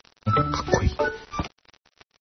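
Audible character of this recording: a quantiser's noise floor 6-bit, dither none; chopped level 3 Hz, depth 60%, duty 25%; MP3

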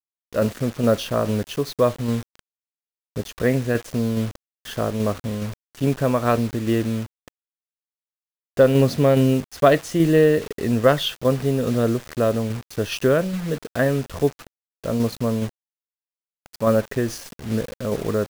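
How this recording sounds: a quantiser's noise floor 6-bit, dither none; tremolo saw down 2.4 Hz, depth 35%

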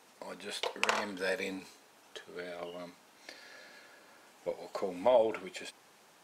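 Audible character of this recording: noise floor -62 dBFS; spectral tilt -3.0 dB/octave

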